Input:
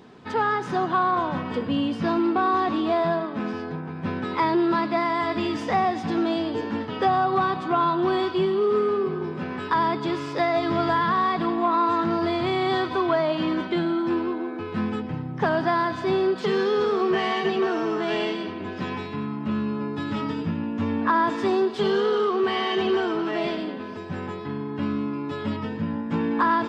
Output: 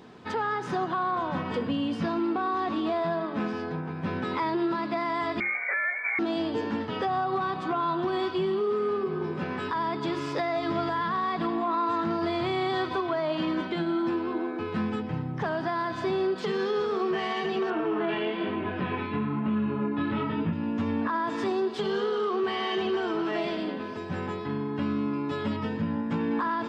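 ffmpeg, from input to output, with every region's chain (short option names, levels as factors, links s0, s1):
-filter_complex "[0:a]asettb=1/sr,asplit=3[s0][s1][s2];[s0]atrim=end=5.404[s3];[s1]atrim=start=5.4:end=6.19,asetpts=PTS-STARTPTS,afade=t=in:d=0.004:c=qsin,afade=t=out:st=0.786:d=0.004:c=qsin,lowpass=f=2100:t=q:w=0.5098,lowpass=f=2100:t=q:w=0.6013,lowpass=f=2100:t=q:w=0.9,lowpass=f=2100:t=q:w=2.563,afreqshift=-2500,highpass=410[s4];[s2]atrim=start=6.186[s5];[s3][s4]acrossfade=d=0.004:c1=hsin:c2=qsin[s6];[s6][s5]acrossfade=d=0.004:c1=qsin:c2=hsin,asettb=1/sr,asplit=3[s7][s8][s9];[s7]atrim=end=17.704[s10];[s8]atrim=start=17.7:end=20.53,asetpts=PTS-STARTPTS,afade=t=in:d=0.004:c=qsin,afade=t=out:st=2.826:d=0.004:c=qsin,lowpass=f=3200:w=0.5412,lowpass=f=3200:w=1.3066,acontrast=45,flanger=delay=18.5:depth=6:speed=1.1[s11];[s9]atrim=start=20.526[s12];[s10][s11]acrossfade=d=0.004:c1=hsin:c2=qsin[s13];[s13][s12]acrossfade=d=0.004:c1=qsin:c2=hsin,bandreject=f=50:t=h:w=6,bandreject=f=100:t=h:w=6,bandreject=f=150:t=h:w=6,bandreject=f=200:t=h:w=6,bandreject=f=250:t=h:w=6,bandreject=f=300:t=h:w=6,bandreject=f=350:t=h:w=6,bandreject=f=400:t=h:w=6,alimiter=limit=0.1:level=0:latency=1:release=198"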